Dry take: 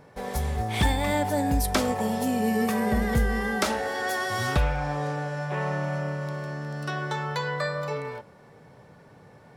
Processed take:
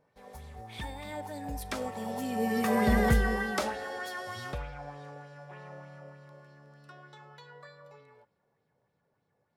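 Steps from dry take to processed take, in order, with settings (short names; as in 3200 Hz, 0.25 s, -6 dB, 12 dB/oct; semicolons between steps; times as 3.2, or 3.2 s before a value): Doppler pass-by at 2.98, 6 m/s, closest 1.7 m; LFO bell 3.3 Hz 490–4400 Hz +7 dB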